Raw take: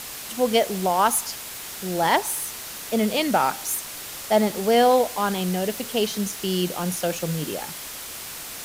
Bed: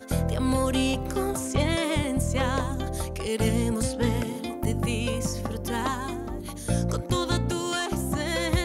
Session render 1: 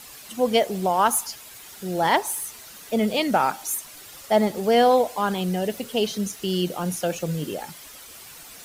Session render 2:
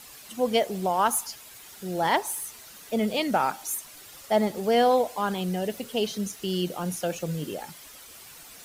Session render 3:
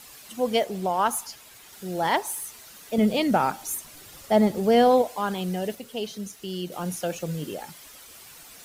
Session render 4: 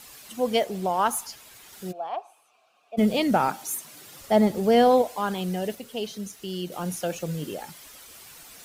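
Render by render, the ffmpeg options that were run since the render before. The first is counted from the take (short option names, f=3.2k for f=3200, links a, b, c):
-af "afftdn=nr=10:nf=-36"
-af "volume=-3.5dB"
-filter_complex "[0:a]asettb=1/sr,asplit=3[a][b][c];[a]atrim=end=0.644[d];[b]atrim=start=0.64:end=1.73,asetpts=PTS-STARTPTS,afade=t=in:d=0.004:c=qsin,afade=t=out:st=1.086:d=0.004:c=qsin,highshelf=f=6.1k:g=-4[e];[c]atrim=start=1.726[f];[d][e]acrossfade=d=0.004:c1=hsin:c2=qsin[g];[g][f]acrossfade=d=0.004:c1=qsin:c2=hsin,asettb=1/sr,asplit=3[h][i][j];[h]atrim=end=2.984[k];[i]atrim=start=2.98:end=5.02,asetpts=PTS-STARTPTS,afade=t=in:d=0.004:c=qsin,afade=t=out:st=2.036:d=0.004:c=qsin,lowshelf=f=360:g=8.5[l];[j]atrim=start=5.016[m];[k][l]acrossfade=d=0.004:c1=hsin:c2=qsin[n];[n][m]acrossfade=d=0.004:c1=qsin:c2=hsin,asplit=3[o][p][q];[o]atrim=end=5.752[r];[p]atrim=start=5.748:end=6.722,asetpts=PTS-STARTPTS,volume=-4.5dB[s];[q]atrim=start=6.718[t];[r][s]acrossfade=d=0.004:c1=hsin:c2=hsin[u];[u][t]acrossfade=d=0.004:c1=hsin:c2=hsin"
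-filter_complex "[0:a]asplit=3[a][b][c];[a]afade=t=out:st=1.91:d=0.02[d];[b]asplit=3[e][f][g];[e]bandpass=f=730:t=q:w=8,volume=0dB[h];[f]bandpass=f=1.09k:t=q:w=8,volume=-6dB[i];[g]bandpass=f=2.44k:t=q:w=8,volume=-9dB[j];[h][i][j]amix=inputs=3:normalize=0,afade=t=in:st=1.91:d=0.02,afade=t=out:st=2.97:d=0.02[k];[c]afade=t=in:st=2.97:d=0.02[l];[d][k][l]amix=inputs=3:normalize=0,asettb=1/sr,asplit=3[m][n][o];[m]atrim=end=3.484[p];[n]atrim=start=3.48:end=4.19,asetpts=PTS-STARTPTS,afade=t=in:d=0.004:c=qsin,afade=t=out:st=0.706:d=0.004:c=qsin,highpass=f=120:w=0.5412,highpass=f=120:w=1.3066[q];[o]atrim=start=4.186[r];[p][q]acrossfade=d=0.004:c1=hsin:c2=qsin[s];[s][r]acrossfade=d=0.004:c1=qsin:c2=hsin"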